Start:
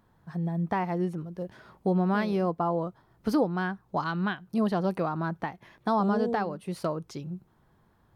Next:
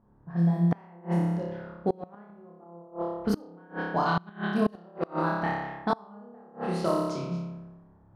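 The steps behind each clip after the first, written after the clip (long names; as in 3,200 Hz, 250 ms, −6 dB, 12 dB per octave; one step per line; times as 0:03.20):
flutter between parallel walls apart 5 metres, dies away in 1.3 s
gate with flip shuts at −14 dBFS, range −28 dB
low-pass that shuts in the quiet parts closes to 820 Hz, open at −23 dBFS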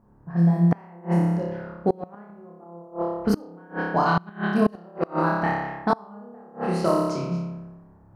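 parametric band 3,500 Hz −9.5 dB 0.27 octaves
level +5 dB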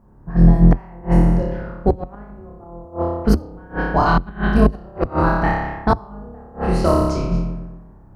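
sub-octave generator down 2 octaves, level +2 dB
level +4.5 dB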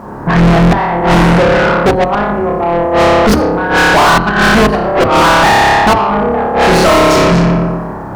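mid-hump overdrive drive 41 dB, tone 4,000 Hz, clips at −1 dBFS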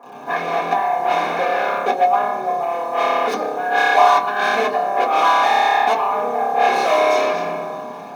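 four-pole ladder high-pass 620 Hz, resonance 40%
in parallel at −8 dB: bit reduction 5 bits
on the sum: convolution reverb RT60 0.15 s, pre-delay 3 ms, DRR −3 dB
level −13.5 dB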